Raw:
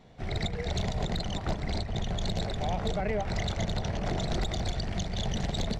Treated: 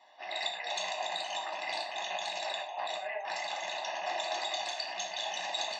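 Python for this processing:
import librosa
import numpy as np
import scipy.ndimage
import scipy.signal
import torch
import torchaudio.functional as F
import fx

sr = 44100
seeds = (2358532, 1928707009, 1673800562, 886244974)

y = fx.rattle_buzz(x, sr, strikes_db=-32.0, level_db=-31.0)
y = scipy.signal.sosfilt(scipy.signal.butter(4, 490.0, 'highpass', fs=sr, output='sos'), y)
y = fx.spec_gate(y, sr, threshold_db=-30, keep='strong')
y = y + 0.99 * np.pad(y, (int(1.1 * sr / 1000.0), 0))[:len(y)]
y = fx.over_compress(y, sr, threshold_db=-36.0, ratio=-1.0, at=(1.41, 3.8))
y = fx.rev_gated(y, sr, seeds[0], gate_ms=140, shape='falling', drr_db=-0.5)
y = y * 10.0 ** (-4.0 / 20.0)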